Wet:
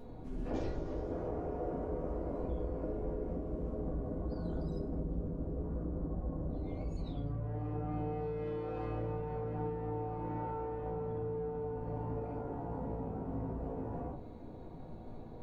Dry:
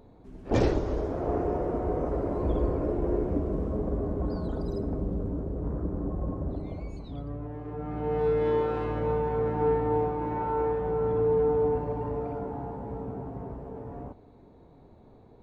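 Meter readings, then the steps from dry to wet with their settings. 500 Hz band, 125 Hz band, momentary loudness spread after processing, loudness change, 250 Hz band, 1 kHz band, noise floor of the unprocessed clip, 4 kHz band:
-11.5 dB, -6.5 dB, 3 LU, -9.5 dB, -8.0 dB, -10.0 dB, -54 dBFS, no reading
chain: compression 6:1, threshold -41 dBFS, peak gain reduction 20 dB; simulated room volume 140 m³, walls furnished, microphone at 1.8 m

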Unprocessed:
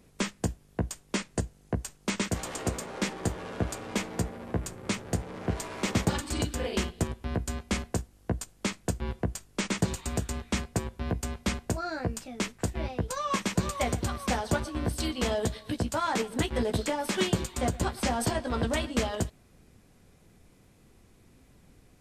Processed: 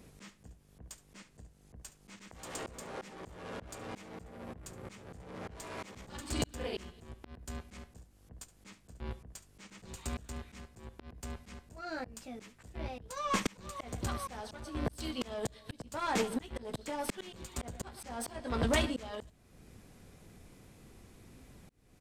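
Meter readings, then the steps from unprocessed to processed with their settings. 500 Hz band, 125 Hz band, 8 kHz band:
-8.5 dB, -12.0 dB, -10.0 dB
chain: single-diode clipper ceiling -27 dBFS; delay 71 ms -21.5 dB; slow attack 504 ms; trim +3 dB

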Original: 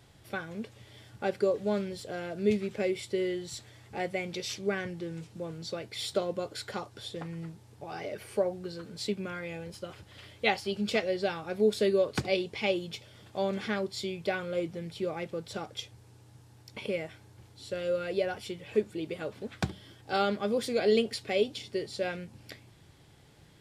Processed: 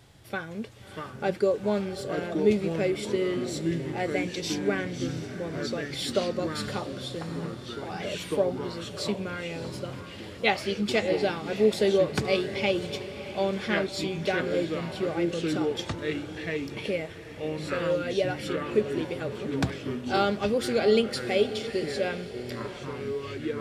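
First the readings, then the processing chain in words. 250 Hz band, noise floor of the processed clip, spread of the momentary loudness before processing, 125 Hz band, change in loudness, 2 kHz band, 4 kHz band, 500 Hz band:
+5.5 dB, -42 dBFS, 14 LU, +6.5 dB, +4.0 dB, +4.5 dB, +4.0 dB, +4.0 dB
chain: echo that smears into a reverb 647 ms, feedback 48%, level -12.5 dB; ever faster or slower copies 553 ms, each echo -4 st, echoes 3, each echo -6 dB; trim +3 dB

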